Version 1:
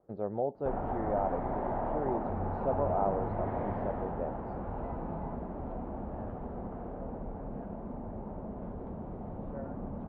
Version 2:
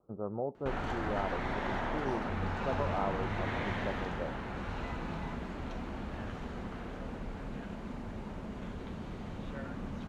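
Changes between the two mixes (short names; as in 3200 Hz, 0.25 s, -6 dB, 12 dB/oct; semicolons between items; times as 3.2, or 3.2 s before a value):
speech: add steep low-pass 1300 Hz 72 dB/oct; master: remove synth low-pass 740 Hz, resonance Q 1.8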